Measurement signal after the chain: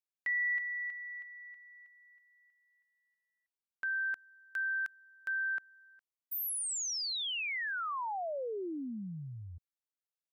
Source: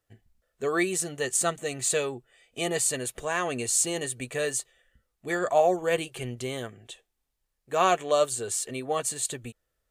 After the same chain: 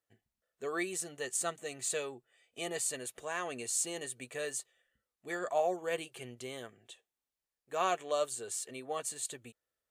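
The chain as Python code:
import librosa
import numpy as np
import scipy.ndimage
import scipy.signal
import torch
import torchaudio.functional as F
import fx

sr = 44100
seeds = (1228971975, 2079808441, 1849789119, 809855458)

y = fx.highpass(x, sr, hz=260.0, slope=6)
y = y * 10.0 ** (-8.5 / 20.0)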